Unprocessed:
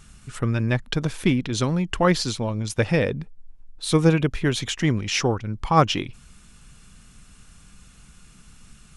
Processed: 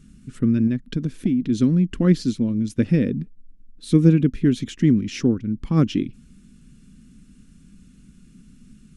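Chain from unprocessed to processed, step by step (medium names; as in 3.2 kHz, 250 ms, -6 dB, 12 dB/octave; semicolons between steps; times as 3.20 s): FFT filter 110 Hz 0 dB, 250 Hz +14 dB, 830 Hz -18 dB, 1.6 kHz -7 dB; 0.67–1.42 s: compression 2.5:1, threshold -19 dBFS, peak gain reduction 8.5 dB; trim -2.5 dB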